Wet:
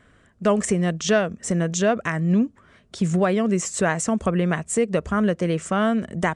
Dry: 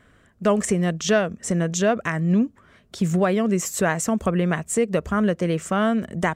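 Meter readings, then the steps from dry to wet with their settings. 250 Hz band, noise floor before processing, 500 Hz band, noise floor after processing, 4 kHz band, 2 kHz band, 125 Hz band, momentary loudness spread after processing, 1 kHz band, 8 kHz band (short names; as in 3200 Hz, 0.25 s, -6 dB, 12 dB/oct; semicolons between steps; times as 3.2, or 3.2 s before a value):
0.0 dB, -57 dBFS, 0.0 dB, -57 dBFS, 0.0 dB, 0.0 dB, 0.0 dB, 4 LU, 0.0 dB, 0.0 dB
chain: downsampling 22050 Hz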